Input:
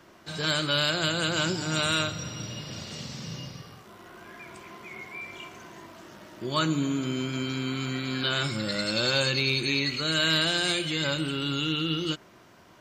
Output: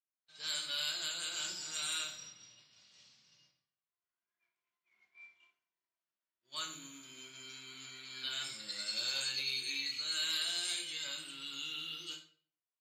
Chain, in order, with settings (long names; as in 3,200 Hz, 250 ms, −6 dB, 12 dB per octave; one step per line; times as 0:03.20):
low-pass that shuts in the quiet parts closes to 2,600 Hz, open at −24 dBFS
first-order pre-emphasis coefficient 0.97
downward expander −42 dBFS
on a send: convolution reverb RT60 0.45 s, pre-delay 9 ms, DRR 2 dB
on the sum: level −5 dB